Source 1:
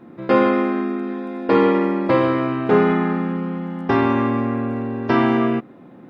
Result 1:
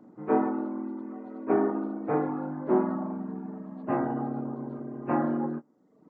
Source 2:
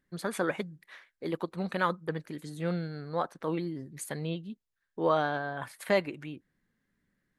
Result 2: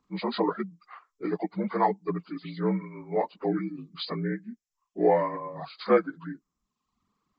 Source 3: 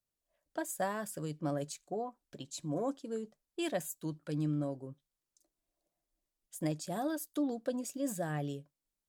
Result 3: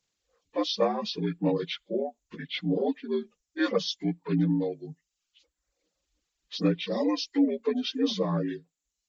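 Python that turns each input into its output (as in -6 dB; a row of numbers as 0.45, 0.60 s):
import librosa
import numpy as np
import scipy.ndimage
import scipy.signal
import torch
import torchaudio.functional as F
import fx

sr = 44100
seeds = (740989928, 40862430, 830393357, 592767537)

y = fx.partial_stretch(x, sr, pct=77)
y = fx.dereverb_blind(y, sr, rt60_s=0.91)
y = y * 10.0 ** (-30 / 20.0) / np.sqrt(np.mean(np.square(y)))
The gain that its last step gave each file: -7.0, +6.0, +11.0 dB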